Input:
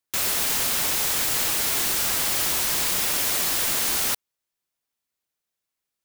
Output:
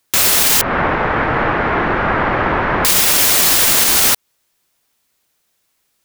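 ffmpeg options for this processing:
ffmpeg -i in.wav -filter_complex "[0:a]asettb=1/sr,asplit=3[link_01][link_02][link_03];[link_01]atrim=end=0.614[link_04];[link_02]atrim=start=0.61:end=2.85,asetpts=PTS-STARTPTS,afade=type=in:duration=0.004:curve=qsin,afade=type=out:start_time=2.236:duration=0.004:curve=qsin,lowpass=frequency=1700:width=0.5412,lowpass=frequency=1700:width=1.3066[link_05];[link_03]atrim=start=2.846[link_06];[link_04][link_05]acrossfade=duration=0.004:curve1=hsin:curve2=qsin[link_07];[link_07][link_06]acrossfade=duration=0.004:curve1=qsin:curve2=hsin,acompressor=threshold=-26dB:ratio=6,alimiter=level_in=19.5dB:limit=-1dB:release=50:level=0:latency=1,volume=-1dB" out.wav

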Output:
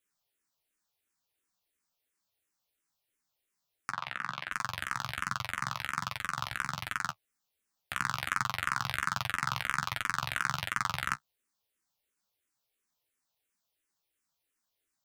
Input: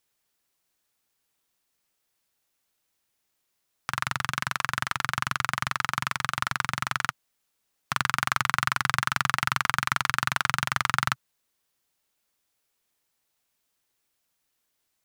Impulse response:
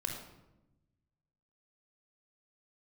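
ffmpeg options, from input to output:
-filter_complex "[0:a]flanger=delay=9.3:depth=7.3:regen=-28:speed=1.3:shape=sinusoidal,asettb=1/sr,asplit=3[link_01][link_02][link_03];[link_01]atrim=end=3.934[link_04];[link_02]atrim=start=3.93:end=4.52,asetpts=PTS-STARTPTS,afade=type=in:duration=0.004:curve=qsin,afade=type=out:start_time=0.586:duration=0.004:curve=qsin,acrossover=split=160 4200:gain=0.0891 1 0.158[link_05][link_06][link_07];[link_05][link_06][link_07]amix=inputs=3:normalize=0[link_08];[link_03]atrim=start=4.516[link_09];[link_04][link_08]acrossfade=duration=0.004:curve1=hsin:curve2=qsin[link_10];[link_10][link_09]acrossfade=duration=0.004:curve1=qsin:curve2=hsin,asplit=2[link_11][link_12];[link_12]afreqshift=-2.9[link_13];[link_11][link_13]amix=inputs=2:normalize=1"

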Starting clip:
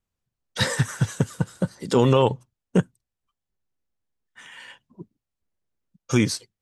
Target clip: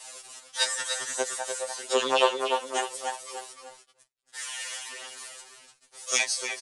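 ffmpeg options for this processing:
ffmpeg -i in.wav -filter_complex "[0:a]aeval=exprs='val(0)+0.5*0.0891*sgn(val(0))':channel_layout=same,aeval=exprs='0.562*(cos(1*acos(clip(val(0)/0.562,-1,1)))-cos(1*PI/2))+0.141*(cos(3*acos(clip(val(0)/0.562,-1,1)))-cos(3*PI/2))+0.00708*(cos(6*acos(clip(val(0)/0.562,-1,1)))-cos(6*PI/2))+0.00891*(cos(7*acos(clip(val(0)/0.562,-1,1)))-cos(7*PI/2))':channel_layout=same,highpass=frequency=470:width=0.5412,highpass=frequency=470:width=1.3066,aemphasis=mode=production:type=50fm,asplit=2[link_01][link_02];[link_02]adelay=297,lowpass=frequency=4600:poles=1,volume=-5dB,asplit=2[link_03][link_04];[link_04]adelay=297,lowpass=frequency=4600:poles=1,volume=0.43,asplit=2[link_05][link_06];[link_06]adelay=297,lowpass=frequency=4600:poles=1,volume=0.43,asplit=2[link_07][link_08];[link_08]adelay=297,lowpass=frequency=4600:poles=1,volume=0.43,asplit=2[link_09][link_10];[link_10]adelay=297,lowpass=frequency=4600:poles=1,volume=0.43[link_11];[link_01][link_03][link_05][link_07][link_09][link_11]amix=inputs=6:normalize=0,flanger=delay=1:depth=8.8:regen=8:speed=0.32:shape=triangular,acrusher=bits=9:mix=0:aa=0.000001,asettb=1/sr,asplit=3[link_12][link_13][link_14];[link_12]atrim=end=2.764[link_15];[link_13]atrim=start=2.76:end=6.22,asetpts=PTS-STARTPTS,afade=type=in:duration=0.004:curve=qsin,afade=type=out:start_time=3.456:duration=0.004:curve=qsin,highshelf=frequency=2200:gain=4[link_16];[link_14]atrim=start=6.216[link_17];[link_15][link_16]acrossfade=duration=0.004:curve1=hsin:curve2=qsin[link_18];[link_18][link_17]acrossfade=duration=0.004:curve1=qsin:curve2=hsin,agate=range=-25dB:threshold=-53dB:ratio=16:detection=peak,aresample=22050,aresample=44100,afftfilt=real='re*2.45*eq(mod(b,6),0)':imag='im*2.45*eq(mod(b,6),0)':win_size=2048:overlap=0.75,volume=6.5dB" out.wav

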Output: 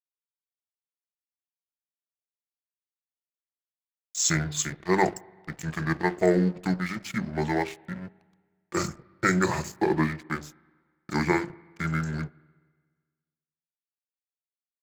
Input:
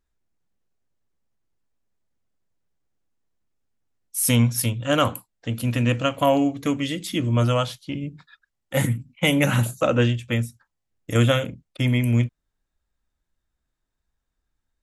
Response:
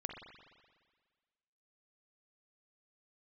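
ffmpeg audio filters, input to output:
-filter_complex "[0:a]highpass=frequency=210:width=0.5412,highpass=frequency=210:width=1.3066,asetrate=28595,aresample=44100,atempo=1.54221,bandreject=frequency=50:width_type=h:width=6,bandreject=frequency=100:width_type=h:width=6,bandreject=frequency=150:width_type=h:width=6,bandreject=frequency=200:width_type=h:width=6,bandreject=frequency=250:width_type=h:width=6,bandreject=frequency=300:width_type=h:width=6,bandreject=frequency=350:width_type=h:width=6,bandreject=frequency=400:width_type=h:width=6,aeval=exprs='sgn(val(0))*max(abs(val(0))-0.01,0)':channel_layout=same,asplit=2[link_01][link_02];[1:a]atrim=start_sample=2205,highshelf=frequency=4200:gain=-10.5,adelay=8[link_03];[link_02][link_03]afir=irnorm=-1:irlink=0,volume=-17dB[link_04];[link_01][link_04]amix=inputs=2:normalize=0,volume=-1dB"

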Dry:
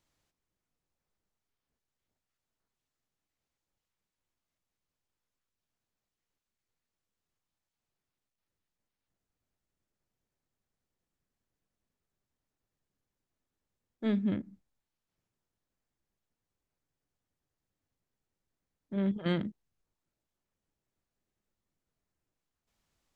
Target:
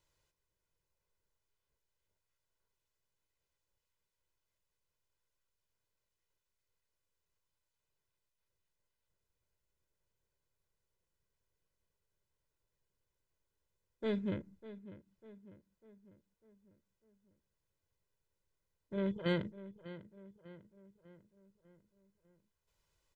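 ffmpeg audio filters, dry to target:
ffmpeg -i in.wav -filter_complex "[0:a]aecho=1:1:2:0.68,asplit=2[link_01][link_02];[link_02]adelay=598,lowpass=frequency=2600:poles=1,volume=-15dB,asplit=2[link_03][link_04];[link_04]adelay=598,lowpass=frequency=2600:poles=1,volume=0.52,asplit=2[link_05][link_06];[link_06]adelay=598,lowpass=frequency=2600:poles=1,volume=0.52,asplit=2[link_07][link_08];[link_08]adelay=598,lowpass=frequency=2600:poles=1,volume=0.52,asplit=2[link_09][link_10];[link_10]adelay=598,lowpass=frequency=2600:poles=1,volume=0.52[link_11];[link_01][link_03][link_05][link_07][link_09][link_11]amix=inputs=6:normalize=0,volume=-2.5dB" out.wav

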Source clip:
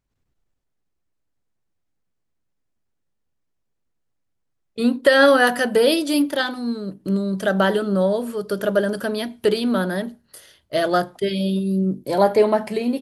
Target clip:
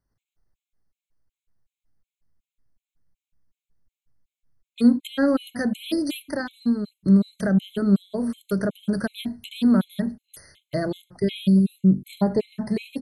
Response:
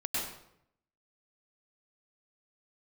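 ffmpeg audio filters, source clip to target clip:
-filter_complex "[0:a]asubboost=boost=4:cutoff=200,acrossover=split=430[link_01][link_02];[link_02]acompressor=threshold=-28dB:ratio=5[link_03];[link_01][link_03]amix=inputs=2:normalize=0,afftfilt=real='re*gt(sin(2*PI*2.7*pts/sr)*(1-2*mod(floor(b*sr/1024/2100),2)),0)':imag='im*gt(sin(2*PI*2.7*pts/sr)*(1-2*mod(floor(b*sr/1024/2100),2)),0)':win_size=1024:overlap=0.75"

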